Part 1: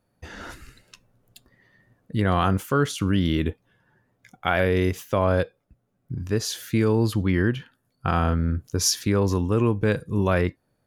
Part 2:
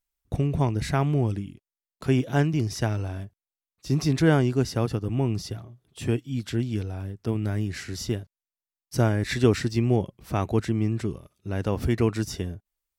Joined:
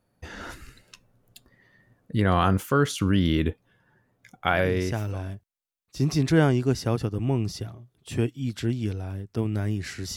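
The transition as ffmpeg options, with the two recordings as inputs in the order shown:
ffmpeg -i cue0.wav -i cue1.wav -filter_complex "[0:a]apad=whole_dur=10.16,atrim=end=10.16,atrim=end=5.23,asetpts=PTS-STARTPTS[link_01];[1:a]atrim=start=2.37:end=8.06,asetpts=PTS-STARTPTS[link_02];[link_01][link_02]acrossfade=duration=0.76:curve1=tri:curve2=tri" out.wav

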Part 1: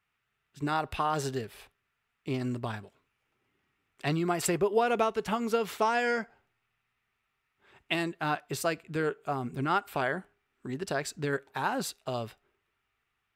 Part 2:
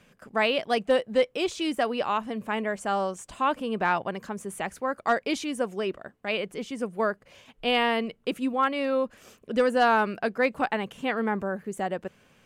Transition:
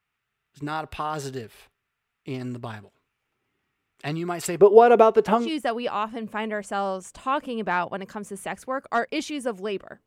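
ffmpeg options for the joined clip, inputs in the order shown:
ffmpeg -i cue0.wav -i cue1.wav -filter_complex "[0:a]asettb=1/sr,asplit=3[link_01][link_02][link_03];[link_01]atrim=end=4.604[link_04];[link_02]atrim=start=4.6:end=5.51,asetpts=PTS-STARTPTS,afade=type=in:duration=0.004:curve=qsin,afade=type=out:start_time=0.906:duration=0.004:curve=qsin,equalizer=frequency=480:width=0.41:gain=13.5[link_05];[link_03]atrim=start=5.506[link_06];[link_04][link_05]acrossfade=duration=0.004:curve1=hsin:curve2=qsin[link_07];[link_07][link_06]acrossfade=duration=0.004:curve1=qsin:curve2=hsin,apad=whole_dur=10.06,atrim=end=10.06,atrim=end=5.51,asetpts=PTS-STARTPTS[link_08];[1:a]atrim=start=1.51:end=6.2,asetpts=PTS-STARTPTS[link_09];[link_08][link_09]acrossfade=duration=0.14:curve1=tri:curve2=tri" out.wav

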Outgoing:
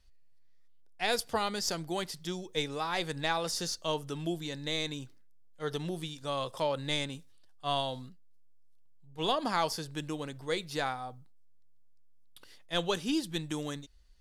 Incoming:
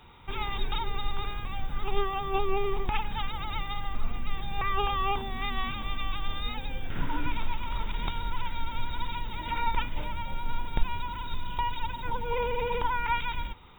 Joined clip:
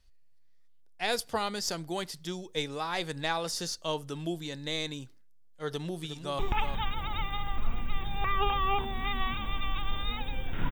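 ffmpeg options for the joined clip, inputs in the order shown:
ffmpeg -i cue0.wav -i cue1.wav -filter_complex "[0:a]apad=whole_dur=10.71,atrim=end=10.71,atrim=end=6.392[link_01];[1:a]atrim=start=2.758:end=7.08[link_02];[link_01][link_02]acrossfade=duration=0.004:curve1=hsin:curve2=hsin,asplit=2[link_03][link_04];[link_04]afade=type=in:start_time=5.68:duration=0.01,afade=type=out:start_time=6.39:duration=0.01,aecho=0:1:360|720:0.354813|0.0354813[link_05];[link_03][link_05]amix=inputs=2:normalize=0" out.wav

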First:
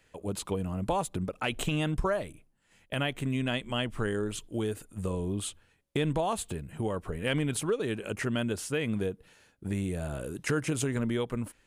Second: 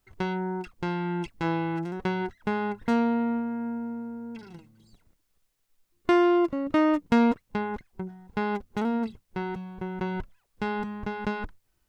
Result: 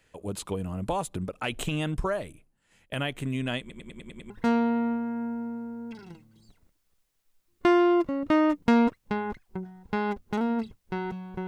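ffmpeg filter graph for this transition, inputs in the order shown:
ffmpeg -i cue0.wav -i cue1.wav -filter_complex "[0:a]apad=whole_dur=11.47,atrim=end=11.47,asplit=7[link_01][link_02][link_03][link_04][link_05][link_06][link_07];[link_01]atrim=end=3.702[link_08];[link_02]atrim=start=3.598:end=3.702[link_09];[link_03]atrim=start=3.598:end=3.702[link_10];[link_04]atrim=start=3.598:end=3.702[link_11];[link_05]atrim=start=3.598:end=3.702[link_12];[link_06]atrim=start=3.598:end=3.702[link_13];[link_07]atrim=start=3.598:end=3.702[link_14];[1:a]atrim=start=2.738:end=9.91[link_15];[link_08][link_09]acrossfade=duration=0.004:curve1=hsin:curve2=hsin[link_16];[link_16][link_10]acrossfade=duration=0.004:curve1=hsin:curve2=hsin[link_17];[link_17][link_11]acrossfade=duration=0.004:curve1=hsin:curve2=hsin[link_18];[link_18][link_12]acrossfade=duration=0.004:curve1=hsin:curve2=hsin[link_19];[link_19][link_13]acrossfade=duration=0.004:curve1=hsin:curve2=hsin[link_20];[link_20][link_14]acrossfade=duration=0.004:curve1=hsin:curve2=hsin[link_21];[link_21][link_15]acrossfade=duration=0.004:curve1=hsin:curve2=hsin" out.wav

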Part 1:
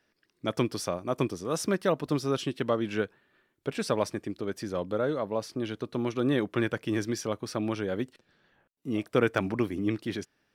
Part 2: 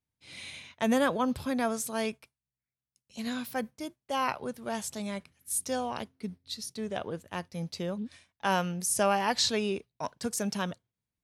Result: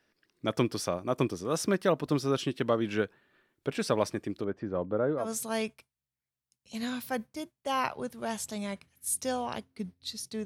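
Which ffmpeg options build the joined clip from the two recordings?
ffmpeg -i cue0.wav -i cue1.wav -filter_complex "[0:a]asettb=1/sr,asplit=3[link_01][link_02][link_03];[link_01]atrim=end=4.444[link_04];[link_02]atrim=start=4.44:end=5.33,asetpts=PTS-STARTPTS,afade=type=in:duration=0.004:curve=qsin,afade=type=out:start_time=0.886:duration=0.004:curve=qsin,lowpass=1400[link_05];[link_03]atrim=start=5.326[link_06];[link_04][link_05]acrossfade=duration=0.004:curve1=hsin:curve2=qsin[link_07];[link_07][link_06]acrossfade=duration=0.004:curve1=qsin:curve2=hsin,apad=whole_dur=10.45,atrim=end=10.45,atrim=end=5.33,asetpts=PTS-STARTPTS[link_08];[1:a]atrim=start=1.61:end=6.89,asetpts=PTS-STARTPTS[link_09];[link_08][link_09]acrossfade=duration=0.16:curve1=tri:curve2=tri" out.wav

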